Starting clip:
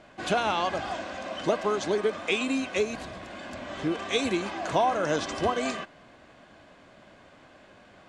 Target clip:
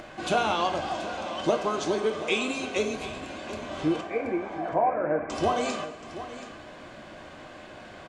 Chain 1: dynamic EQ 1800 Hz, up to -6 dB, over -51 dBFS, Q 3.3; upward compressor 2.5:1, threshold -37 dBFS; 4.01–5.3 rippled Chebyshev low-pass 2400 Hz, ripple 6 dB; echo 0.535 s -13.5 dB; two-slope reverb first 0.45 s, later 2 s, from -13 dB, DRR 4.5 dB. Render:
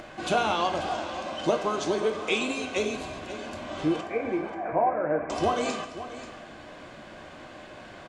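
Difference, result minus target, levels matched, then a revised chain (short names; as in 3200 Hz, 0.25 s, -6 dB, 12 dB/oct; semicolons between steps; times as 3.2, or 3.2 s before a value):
echo 0.193 s early
dynamic EQ 1800 Hz, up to -6 dB, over -51 dBFS, Q 3.3; upward compressor 2.5:1, threshold -37 dBFS; 4.01–5.3 rippled Chebyshev low-pass 2400 Hz, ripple 6 dB; echo 0.728 s -13.5 dB; two-slope reverb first 0.45 s, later 2 s, from -13 dB, DRR 4.5 dB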